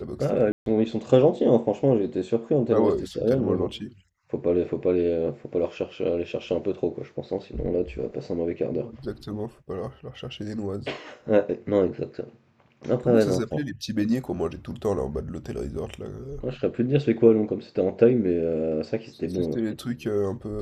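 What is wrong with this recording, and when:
0.52–0.66 s: dropout 142 ms

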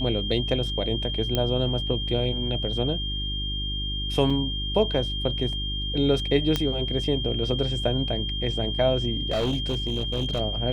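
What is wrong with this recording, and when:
hum 50 Hz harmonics 7 -31 dBFS
whine 3.2 kHz -30 dBFS
1.35 s: pop -10 dBFS
4.30 s: dropout 5 ms
6.56 s: pop -9 dBFS
9.30–10.41 s: clipped -21 dBFS

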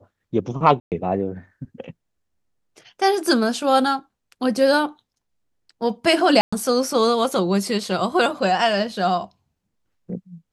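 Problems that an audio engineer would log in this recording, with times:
0.80–0.92 s: dropout 118 ms
6.41–6.53 s: dropout 115 ms

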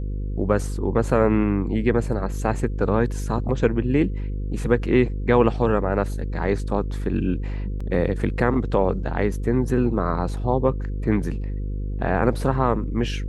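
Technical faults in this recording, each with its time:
buzz 50 Hz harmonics 10 -27 dBFS
7.80 s: dropout 4.9 ms

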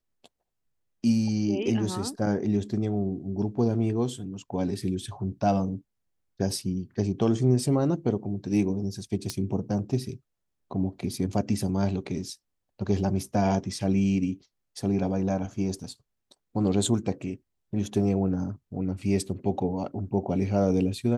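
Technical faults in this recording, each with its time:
9.30 s: pop -15 dBFS

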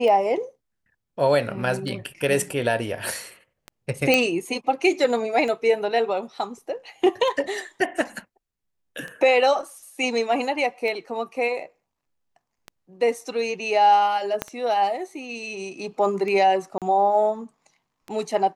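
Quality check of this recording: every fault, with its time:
tick 33 1/3 rpm -20 dBFS
4.14 s: pop -5 dBFS
14.42 s: pop -9 dBFS
16.78–16.82 s: dropout 37 ms

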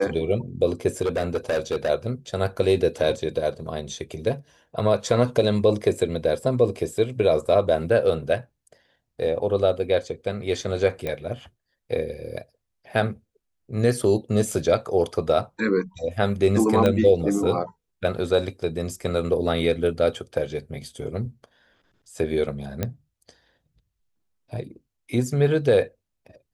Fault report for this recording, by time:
1.01–1.89 s: clipped -19 dBFS
11.07 s: pop -16 dBFS
16.86 s: pop -9 dBFS
22.83 s: pop -11 dBFS

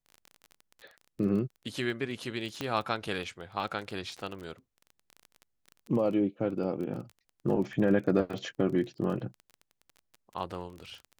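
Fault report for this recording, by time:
crackle 22 per s -37 dBFS
2.61 s: pop -18 dBFS

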